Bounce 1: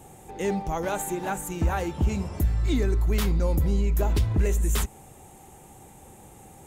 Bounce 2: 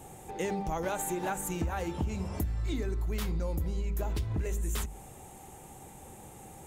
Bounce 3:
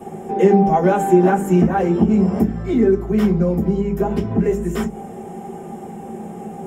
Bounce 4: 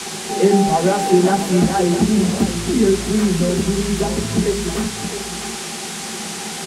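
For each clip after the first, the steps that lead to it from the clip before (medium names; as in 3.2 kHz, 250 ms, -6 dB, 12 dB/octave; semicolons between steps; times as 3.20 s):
hum notches 50/100/150/200/250/300/350/400 Hz; compression, threshold -29 dBFS, peak gain reduction 10.5 dB
reverberation RT60 0.15 s, pre-delay 3 ms, DRR -6.5 dB; trim -4.5 dB
band noise 690–9600 Hz -29 dBFS; delay 663 ms -10.5 dB; trim -1 dB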